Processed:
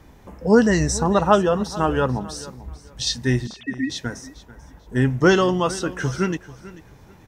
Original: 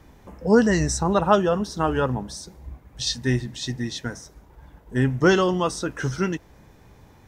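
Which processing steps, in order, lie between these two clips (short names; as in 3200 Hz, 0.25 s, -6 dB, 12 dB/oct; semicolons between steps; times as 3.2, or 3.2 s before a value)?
3.47–3.9 sine-wave speech; on a send: feedback echo 0.44 s, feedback 23%, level -18 dB; on the sum: gain +2 dB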